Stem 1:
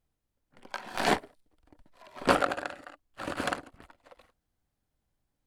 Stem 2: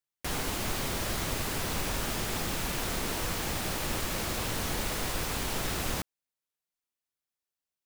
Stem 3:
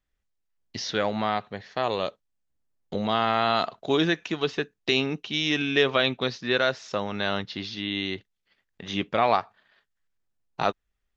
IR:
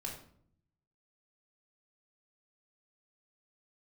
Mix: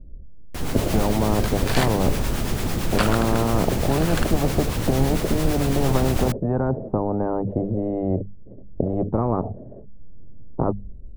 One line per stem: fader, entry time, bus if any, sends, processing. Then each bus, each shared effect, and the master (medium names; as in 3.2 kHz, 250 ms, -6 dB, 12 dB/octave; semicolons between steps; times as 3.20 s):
+3.0 dB, 0.70 s, no send, amplifier tone stack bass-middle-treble 10-0-10
+1.0 dB, 0.30 s, no send, level rider gain up to 11 dB; harmonic tremolo 8.9 Hz, depth 50%, crossover 730 Hz; auto duck -12 dB, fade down 1.15 s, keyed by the third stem
-5.5 dB, 0.00 s, no send, Chebyshev low-pass 600 Hz, order 4; bass shelf 350 Hz +9 dB; spectrum-flattening compressor 10:1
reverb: none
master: bass shelf 470 Hz +12 dB; hum notches 50/100/150/200 Hz; level rider gain up to 3.5 dB